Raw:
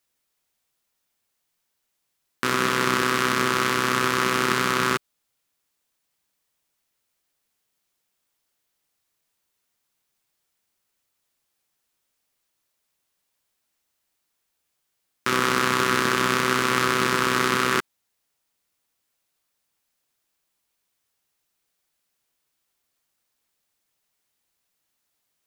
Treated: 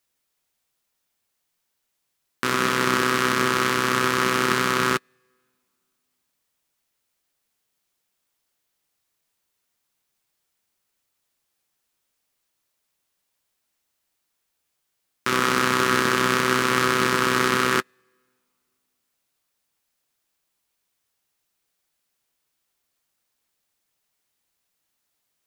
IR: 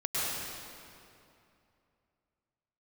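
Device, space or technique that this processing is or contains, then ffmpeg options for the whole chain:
keyed gated reverb: -filter_complex "[0:a]asplit=3[link_01][link_02][link_03];[1:a]atrim=start_sample=2205[link_04];[link_02][link_04]afir=irnorm=-1:irlink=0[link_05];[link_03]apad=whole_len=1123097[link_06];[link_05][link_06]sidechaingate=range=-33dB:threshold=-20dB:ratio=16:detection=peak,volume=-17.5dB[link_07];[link_01][link_07]amix=inputs=2:normalize=0"

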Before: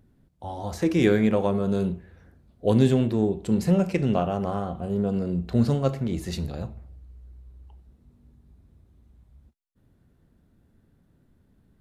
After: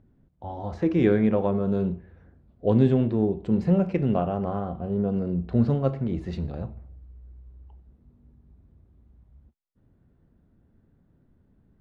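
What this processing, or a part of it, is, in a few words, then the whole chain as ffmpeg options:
phone in a pocket: -af "lowpass=3800,highshelf=frequency=2100:gain=-10"

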